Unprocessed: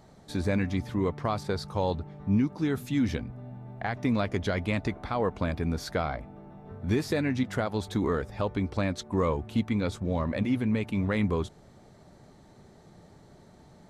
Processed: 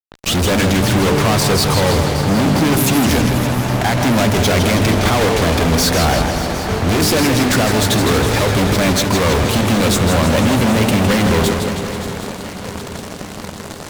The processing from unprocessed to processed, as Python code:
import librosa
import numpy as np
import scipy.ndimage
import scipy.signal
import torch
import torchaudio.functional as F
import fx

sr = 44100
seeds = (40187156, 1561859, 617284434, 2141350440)

p1 = fx.tape_start_head(x, sr, length_s=0.4)
p2 = fx.high_shelf(p1, sr, hz=4600.0, db=8.0)
p3 = fx.level_steps(p2, sr, step_db=14)
p4 = p2 + F.gain(torch.from_numpy(p3), -1.0).numpy()
p5 = fx.hum_notches(p4, sr, base_hz=50, count=9)
p6 = fx.fuzz(p5, sr, gain_db=48.0, gate_db=-44.0)
p7 = p6 + fx.echo_swing(p6, sr, ms=765, ratio=3, feedback_pct=59, wet_db=-14, dry=0)
p8 = fx.echo_warbled(p7, sr, ms=161, feedback_pct=62, rate_hz=2.8, cents=113, wet_db=-6.5)
y = F.gain(torch.from_numpy(p8), -1.0).numpy()